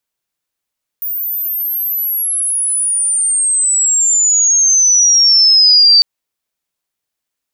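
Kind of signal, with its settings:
glide logarithmic 15,000 Hz → 4,600 Hz −17 dBFS → −4 dBFS 5.00 s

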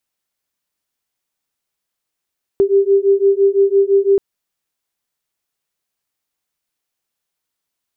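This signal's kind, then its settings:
two tones that beat 392 Hz, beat 5.9 Hz, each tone −13 dBFS 1.58 s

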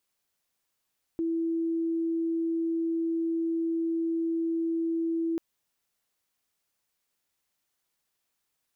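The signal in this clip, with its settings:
tone sine 330 Hz −25.5 dBFS 4.19 s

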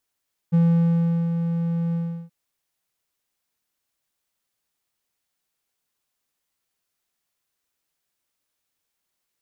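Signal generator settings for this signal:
note with an ADSR envelope triangle 168 Hz, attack 23 ms, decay 747 ms, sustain −7.5 dB, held 1.42 s, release 357 ms −11.5 dBFS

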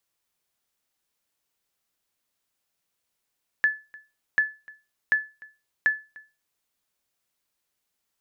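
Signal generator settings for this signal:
ping with an echo 1,730 Hz, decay 0.28 s, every 0.74 s, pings 4, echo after 0.30 s, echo −24 dB −13 dBFS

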